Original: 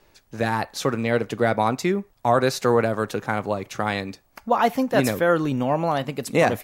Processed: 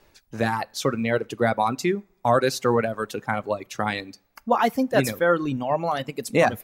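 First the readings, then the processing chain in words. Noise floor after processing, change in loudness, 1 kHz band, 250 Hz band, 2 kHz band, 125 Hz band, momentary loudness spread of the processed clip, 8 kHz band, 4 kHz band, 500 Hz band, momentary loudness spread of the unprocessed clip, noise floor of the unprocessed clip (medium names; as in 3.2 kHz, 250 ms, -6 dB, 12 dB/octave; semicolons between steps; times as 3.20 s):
-65 dBFS, -1.5 dB, -1.0 dB, -2.0 dB, -0.5 dB, -2.5 dB, 8 LU, -0.5 dB, -0.5 dB, -1.5 dB, 6 LU, -61 dBFS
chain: two-slope reverb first 0.4 s, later 1.7 s, from -20 dB, DRR 14 dB; reverb removal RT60 1.9 s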